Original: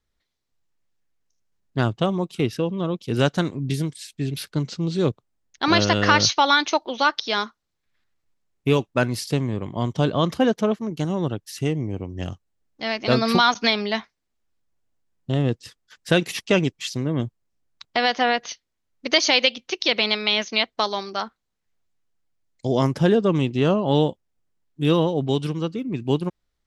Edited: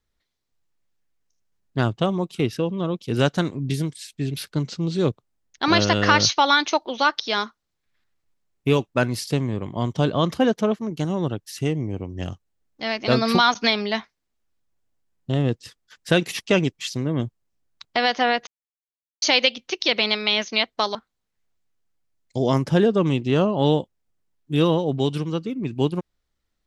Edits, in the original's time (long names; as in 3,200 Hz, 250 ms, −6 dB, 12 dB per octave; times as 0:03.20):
0:18.47–0:19.22: silence
0:20.95–0:21.24: remove